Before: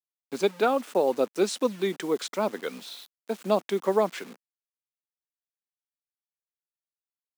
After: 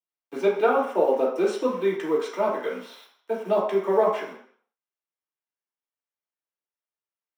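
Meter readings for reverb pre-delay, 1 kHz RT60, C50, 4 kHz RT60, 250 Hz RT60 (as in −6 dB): 3 ms, 0.60 s, 4.0 dB, 0.60 s, 0.40 s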